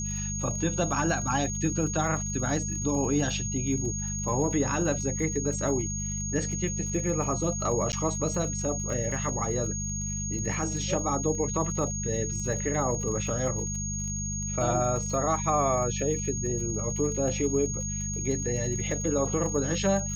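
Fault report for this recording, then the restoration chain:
surface crackle 44 per second −36 dBFS
mains hum 50 Hz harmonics 4 −34 dBFS
whistle 6,600 Hz −33 dBFS
0:07.92–0:07.93: drop-out 9.9 ms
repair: click removal
hum removal 50 Hz, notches 4
notch filter 6,600 Hz, Q 30
repair the gap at 0:07.92, 9.9 ms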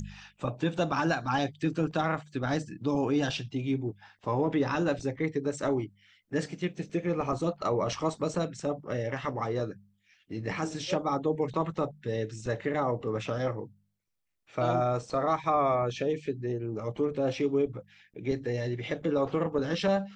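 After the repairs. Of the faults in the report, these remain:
none of them is left

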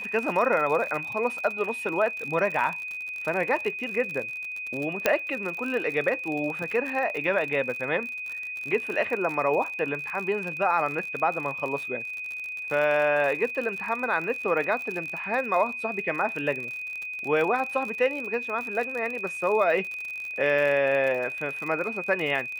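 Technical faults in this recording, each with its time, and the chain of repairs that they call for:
surface crackle 56 per second −31 dBFS
whistle 2,500 Hz −32 dBFS
0:05.06: click −6 dBFS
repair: click removal
notch filter 2,500 Hz, Q 30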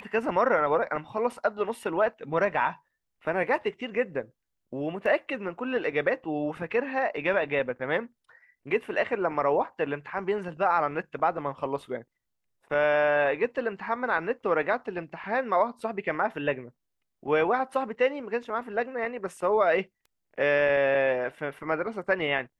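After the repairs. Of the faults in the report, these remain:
0:05.06: click

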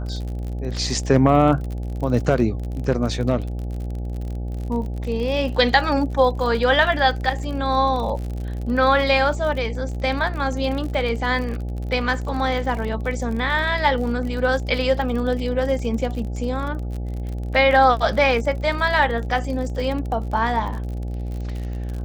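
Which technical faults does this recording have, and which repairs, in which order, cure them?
mains buzz 60 Hz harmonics 14 −27 dBFS
surface crackle 46 per second −29 dBFS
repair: click removal
hum removal 60 Hz, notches 14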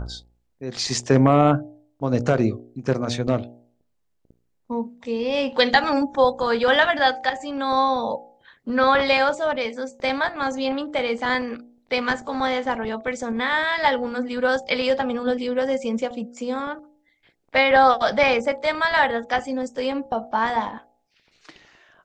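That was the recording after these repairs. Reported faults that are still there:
none of them is left

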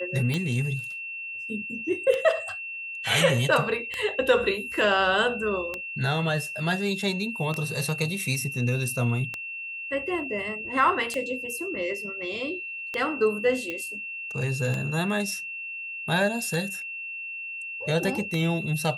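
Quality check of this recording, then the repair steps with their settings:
scratch tick 33 1/3 rpm −15 dBFS
whistle 2,700 Hz −33 dBFS
0:13.70: click −19 dBFS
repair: click removal
notch filter 2,700 Hz, Q 30

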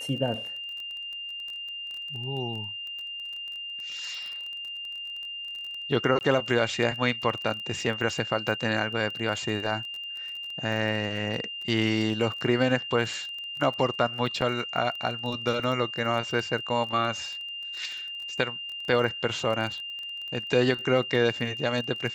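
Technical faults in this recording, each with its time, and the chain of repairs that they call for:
surface crackle 22 per second −34 dBFS
whistle 2,800 Hz −34 dBFS
0:06.19–0:06.21: drop-out 19 ms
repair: click removal
notch filter 2,800 Hz, Q 30
repair the gap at 0:06.19, 19 ms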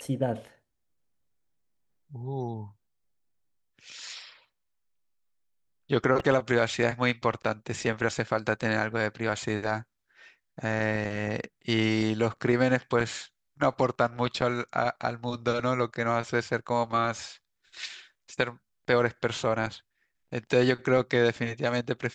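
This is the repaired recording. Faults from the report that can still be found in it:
none of them is left

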